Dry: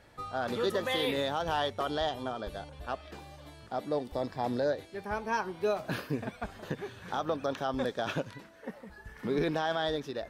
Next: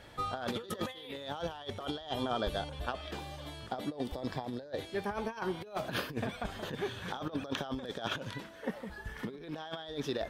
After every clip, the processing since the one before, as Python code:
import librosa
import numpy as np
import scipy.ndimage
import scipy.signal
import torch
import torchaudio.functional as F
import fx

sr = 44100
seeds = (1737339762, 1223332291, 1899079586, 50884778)

y = fx.peak_eq(x, sr, hz=3300.0, db=7.0, octaves=0.27)
y = fx.over_compress(y, sr, threshold_db=-36.0, ratio=-0.5)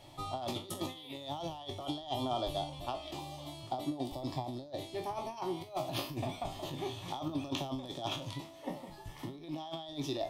y = fx.spec_trails(x, sr, decay_s=0.3)
y = fx.fixed_phaser(y, sr, hz=310.0, stages=8)
y = y * 10.0 ** (1.0 / 20.0)